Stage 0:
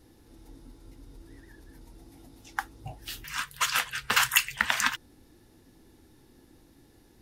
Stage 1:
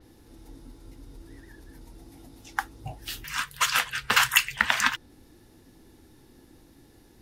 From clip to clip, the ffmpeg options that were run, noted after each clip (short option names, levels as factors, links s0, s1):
-af "adynamicequalizer=threshold=0.00631:dfrequency=5500:dqfactor=0.7:tfrequency=5500:tqfactor=0.7:attack=5:release=100:ratio=0.375:range=2.5:mode=cutabove:tftype=highshelf,volume=1.41"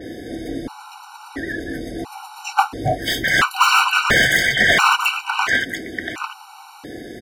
-filter_complex "[0:a]aecho=1:1:689|1378:0.2|0.0439,asplit=2[s0][s1];[s1]highpass=f=720:p=1,volume=63.1,asoftclip=type=tanh:threshold=0.891[s2];[s0][s2]amix=inputs=2:normalize=0,lowpass=f=1400:p=1,volume=0.501,afftfilt=real='re*gt(sin(2*PI*0.73*pts/sr)*(1-2*mod(floor(b*sr/1024/760),2)),0)':imag='im*gt(sin(2*PI*0.73*pts/sr)*(1-2*mod(floor(b*sr/1024/760),2)),0)':win_size=1024:overlap=0.75,volume=1.26"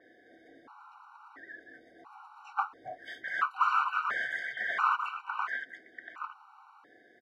-af "bandpass=f=1200:t=q:w=3.7:csg=0,volume=0.376"